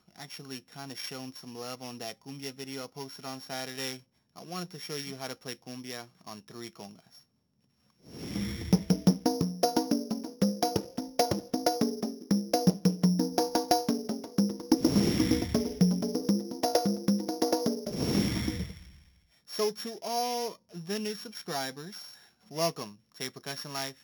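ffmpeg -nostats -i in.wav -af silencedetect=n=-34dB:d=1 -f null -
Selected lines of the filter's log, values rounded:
silence_start: 6.85
silence_end: 8.21 | silence_duration: 1.36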